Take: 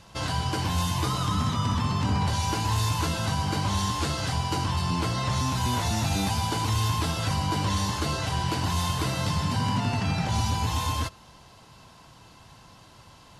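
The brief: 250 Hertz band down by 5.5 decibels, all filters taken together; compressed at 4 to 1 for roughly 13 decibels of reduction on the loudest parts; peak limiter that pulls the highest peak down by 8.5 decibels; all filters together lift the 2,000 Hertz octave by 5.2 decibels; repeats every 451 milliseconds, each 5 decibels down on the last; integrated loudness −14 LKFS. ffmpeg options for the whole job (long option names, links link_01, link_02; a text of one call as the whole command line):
ffmpeg -i in.wav -af "equalizer=frequency=250:width_type=o:gain=-9,equalizer=frequency=2000:width_type=o:gain=7,acompressor=threshold=-39dB:ratio=4,alimiter=level_in=10.5dB:limit=-24dB:level=0:latency=1,volume=-10.5dB,aecho=1:1:451|902|1353|1804|2255|2706|3157:0.562|0.315|0.176|0.0988|0.0553|0.031|0.0173,volume=28dB" out.wav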